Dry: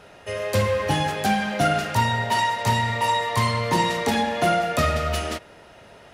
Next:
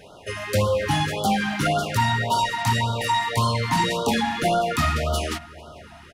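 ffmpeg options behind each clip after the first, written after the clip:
ffmpeg -i in.wav -filter_complex "[0:a]asplit=2[link_01][link_02];[link_02]adelay=447,lowpass=frequency=3100:poles=1,volume=-22dB,asplit=2[link_03][link_04];[link_04]adelay=447,lowpass=frequency=3100:poles=1,volume=0.52,asplit=2[link_05][link_06];[link_06]adelay=447,lowpass=frequency=3100:poles=1,volume=0.52,asplit=2[link_07][link_08];[link_08]adelay=447,lowpass=frequency=3100:poles=1,volume=0.52[link_09];[link_01][link_03][link_05][link_07][link_09]amix=inputs=5:normalize=0,asoftclip=type=tanh:threshold=-15.5dB,afftfilt=real='re*(1-between(b*sr/1024,430*pow(2100/430,0.5+0.5*sin(2*PI*1.8*pts/sr))/1.41,430*pow(2100/430,0.5+0.5*sin(2*PI*1.8*pts/sr))*1.41))':imag='im*(1-between(b*sr/1024,430*pow(2100/430,0.5+0.5*sin(2*PI*1.8*pts/sr))/1.41,430*pow(2100/430,0.5+0.5*sin(2*PI*1.8*pts/sr))*1.41))':win_size=1024:overlap=0.75,volume=2.5dB" out.wav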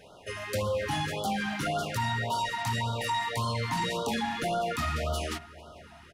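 ffmpeg -i in.wav -af "bandreject=frequency=50:width_type=h:width=6,bandreject=frequency=100:width_type=h:width=6,bandreject=frequency=150:width_type=h:width=6,bandreject=frequency=200:width_type=h:width=6,bandreject=frequency=250:width_type=h:width=6,bandreject=frequency=300:width_type=h:width=6,bandreject=frequency=350:width_type=h:width=6,bandreject=frequency=400:width_type=h:width=6,alimiter=limit=-16.5dB:level=0:latency=1:release=34,volume=-6dB" out.wav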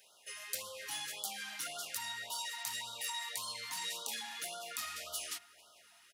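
ffmpeg -i in.wav -af "aderivative,volume=1.5dB" out.wav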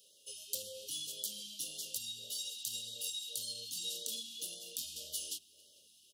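ffmpeg -i in.wav -af "asuperstop=centerf=1300:order=20:qfactor=0.56,volume=1dB" out.wav

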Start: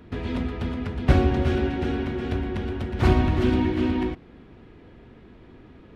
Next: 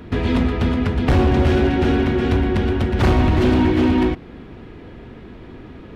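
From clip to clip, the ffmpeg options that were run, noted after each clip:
ffmpeg -i in.wav -filter_complex "[0:a]asplit=2[link_01][link_02];[link_02]alimiter=limit=-15.5dB:level=0:latency=1:release=475,volume=3dB[link_03];[link_01][link_03]amix=inputs=2:normalize=0,asoftclip=type=hard:threshold=-13.5dB,volume=2.5dB" out.wav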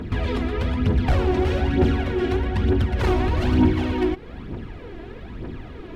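ffmpeg -i in.wav -af "alimiter=limit=-17.5dB:level=0:latency=1:release=210,aphaser=in_gain=1:out_gain=1:delay=3.1:decay=0.59:speed=1.1:type=triangular" out.wav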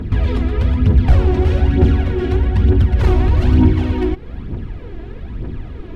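ffmpeg -i in.wav -af "lowshelf=frequency=180:gain=11" out.wav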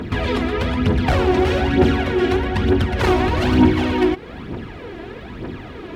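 ffmpeg -i in.wav -af "highpass=frequency=490:poles=1,volume=7.5dB" out.wav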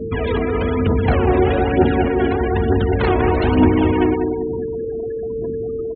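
ffmpeg -i in.wav -filter_complex "[0:a]aeval=exprs='val(0)+0.0631*sin(2*PI*450*n/s)':channel_layout=same,asplit=2[link_01][link_02];[link_02]adelay=193,lowpass=frequency=2300:poles=1,volume=-4.5dB,asplit=2[link_03][link_04];[link_04]adelay=193,lowpass=frequency=2300:poles=1,volume=0.5,asplit=2[link_05][link_06];[link_06]adelay=193,lowpass=frequency=2300:poles=1,volume=0.5,asplit=2[link_07][link_08];[link_08]adelay=193,lowpass=frequency=2300:poles=1,volume=0.5,asplit=2[link_09][link_10];[link_10]adelay=193,lowpass=frequency=2300:poles=1,volume=0.5,asplit=2[link_11][link_12];[link_12]adelay=193,lowpass=frequency=2300:poles=1,volume=0.5[link_13];[link_01][link_03][link_05][link_07][link_09][link_11][link_13]amix=inputs=7:normalize=0,afftfilt=real='re*gte(hypot(re,im),0.0794)':imag='im*gte(hypot(re,im),0.0794)':win_size=1024:overlap=0.75,volume=-1dB" out.wav

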